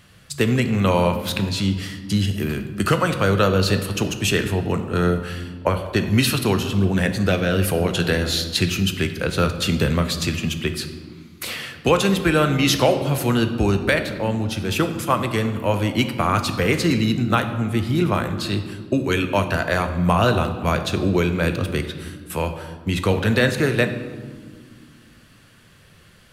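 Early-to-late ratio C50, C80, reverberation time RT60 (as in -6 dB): 9.5 dB, 11.0 dB, 1.8 s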